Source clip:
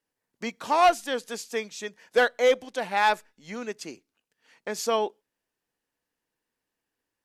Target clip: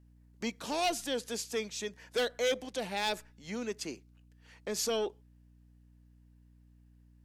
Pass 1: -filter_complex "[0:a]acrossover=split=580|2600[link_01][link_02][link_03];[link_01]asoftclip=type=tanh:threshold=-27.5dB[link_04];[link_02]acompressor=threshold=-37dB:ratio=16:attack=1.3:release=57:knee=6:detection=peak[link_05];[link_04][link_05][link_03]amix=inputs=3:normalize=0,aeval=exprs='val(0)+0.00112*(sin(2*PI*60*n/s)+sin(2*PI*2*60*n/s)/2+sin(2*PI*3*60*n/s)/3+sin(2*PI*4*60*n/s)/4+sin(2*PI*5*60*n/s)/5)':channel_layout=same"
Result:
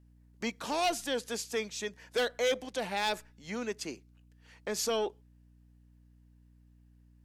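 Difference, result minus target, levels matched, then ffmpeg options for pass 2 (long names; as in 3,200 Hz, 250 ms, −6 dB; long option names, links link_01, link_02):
downward compressor: peak gain reduction −8 dB
-filter_complex "[0:a]acrossover=split=580|2600[link_01][link_02][link_03];[link_01]asoftclip=type=tanh:threshold=-27.5dB[link_04];[link_02]acompressor=threshold=-45.5dB:ratio=16:attack=1.3:release=57:knee=6:detection=peak[link_05];[link_04][link_05][link_03]amix=inputs=3:normalize=0,aeval=exprs='val(0)+0.00112*(sin(2*PI*60*n/s)+sin(2*PI*2*60*n/s)/2+sin(2*PI*3*60*n/s)/3+sin(2*PI*4*60*n/s)/4+sin(2*PI*5*60*n/s)/5)':channel_layout=same"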